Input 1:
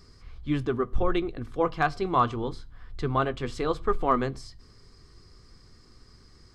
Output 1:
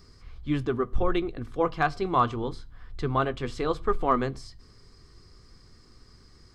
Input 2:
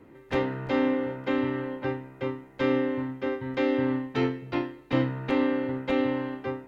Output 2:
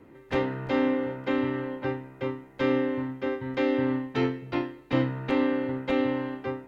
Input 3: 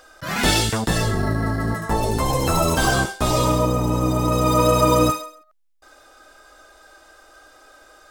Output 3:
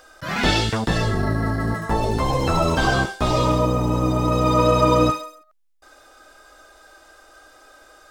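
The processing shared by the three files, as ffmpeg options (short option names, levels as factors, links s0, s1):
-filter_complex "[0:a]acrossover=split=5600[s0][s1];[s1]acompressor=threshold=0.00398:ratio=4:attack=1:release=60[s2];[s0][s2]amix=inputs=2:normalize=0"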